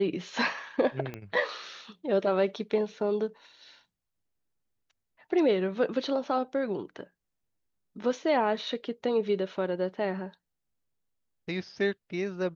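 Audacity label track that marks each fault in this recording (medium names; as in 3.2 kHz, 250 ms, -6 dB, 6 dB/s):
1.140000	1.140000	pop -23 dBFS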